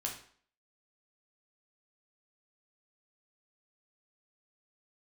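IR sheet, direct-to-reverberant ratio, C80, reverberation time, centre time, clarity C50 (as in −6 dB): −1.0 dB, 11.0 dB, 0.50 s, 24 ms, 7.0 dB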